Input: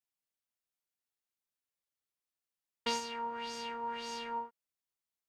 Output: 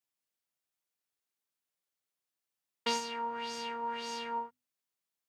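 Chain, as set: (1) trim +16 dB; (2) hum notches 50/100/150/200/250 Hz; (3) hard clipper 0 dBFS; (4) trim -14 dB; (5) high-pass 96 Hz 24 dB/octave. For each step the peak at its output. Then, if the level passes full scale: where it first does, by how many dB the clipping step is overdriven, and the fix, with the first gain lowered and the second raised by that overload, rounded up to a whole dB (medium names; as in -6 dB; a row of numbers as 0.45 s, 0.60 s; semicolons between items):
-5.5 dBFS, -5.5 dBFS, -5.5 dBFS, -19.5 dBFS, -18.5 dBFS; nothing clips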